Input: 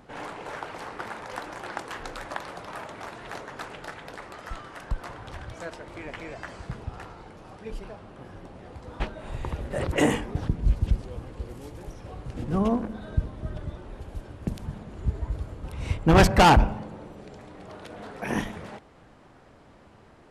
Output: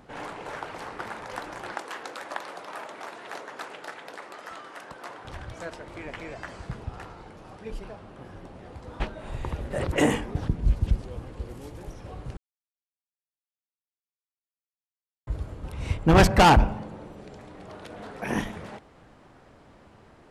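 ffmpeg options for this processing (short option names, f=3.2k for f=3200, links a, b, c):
-filter_complex "[0:a]asettb=1/sr,asplit=3[a][b][c];[a]atrim=end=1.754[d];[b]atrim=start=1.75:end=5.25,asetpts=PTS-STARTPTS,afade=t=in:d=0.004:c=qsin,afade=t=out:st=3.496:d=0.004:c=qsin,highpass=300[e];[c]atrim=start=5.246[f];[d][e]acrossfade=d=0.004:c1=hsin:c2=qsin[g];[g][f]acrossfade=d=0.004:c1=qsin:c2=hsin,asplit=3[h][i][j];[h]atrim=end=12.37,asetpts=PTS-STARTPTS,afade=t=out:st=12.366:d=0.004:c=hsin[k];[i]atrim=start=12.37:end=15.27,asetpts=PTS-STARTPTS,volume=0[l];[j]atrim=start=15.27,asetpts=PTS-STARTPTS,afade=t=in:d=0.004:c=hsin[m];[k][l][m]concat=n=3:v=0:a=1"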